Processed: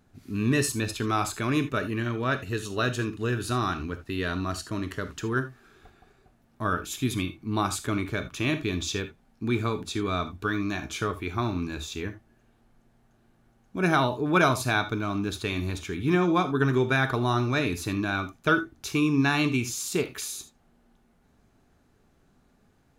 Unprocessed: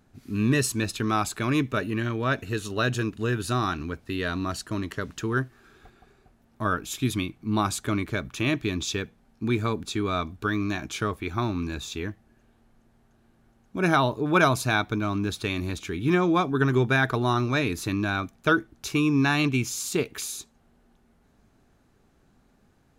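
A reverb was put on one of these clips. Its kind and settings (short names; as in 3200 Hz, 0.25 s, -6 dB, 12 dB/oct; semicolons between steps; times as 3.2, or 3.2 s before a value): non-linear reverb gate 0.1 s flat, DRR 8.5 dB; gain -1.5 dB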